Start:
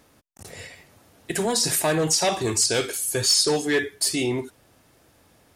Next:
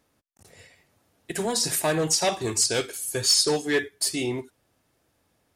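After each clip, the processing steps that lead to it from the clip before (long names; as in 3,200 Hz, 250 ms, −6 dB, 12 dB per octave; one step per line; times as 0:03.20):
expander for the loud parts 1.5 to 1, over −40 dBFS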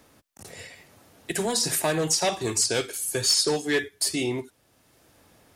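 multiband upward and downward compressor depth 40%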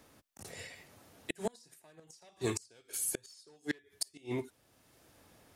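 gate with flip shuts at −16 dBFS, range −31 dB
level −4.5 dB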